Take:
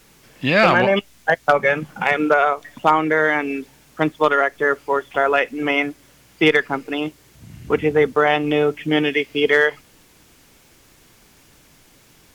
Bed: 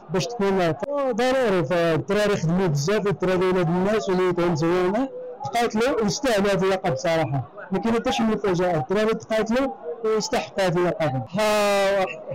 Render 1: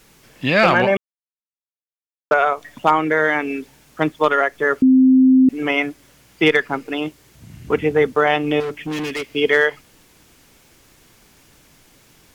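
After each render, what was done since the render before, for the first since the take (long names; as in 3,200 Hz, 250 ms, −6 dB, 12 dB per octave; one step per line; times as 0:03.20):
0:00.97–0:02.31: silence
0:04.82–0:05.49: beep over 260 Hz −8 dBFS
0:08.60–0:09.28: hard clipping −22.5 dBFS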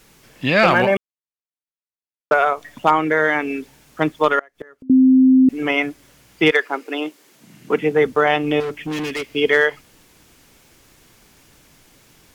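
0:00.71–0:02.53: running median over 5 samples
0:04.39–0:04.90: gate with flip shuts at −15 dBFS, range −28 dB
0:06.50–0:08.04: high-pass filter 370 Hz → 130 Hz 24 dB per octave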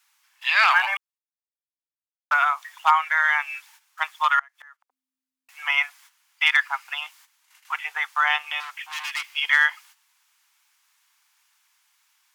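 noise gate −45 dBFS, range −12 dB
Butterworth high-pass 880 Hz 48 dB per octave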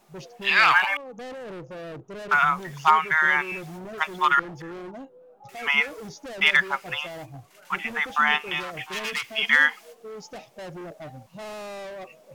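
mix in bed −17 dB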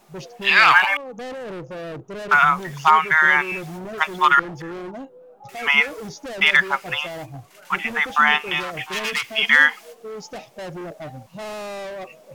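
level +5 dB
brickwall limiter −3 dBFS, peak gain reduction 3 dB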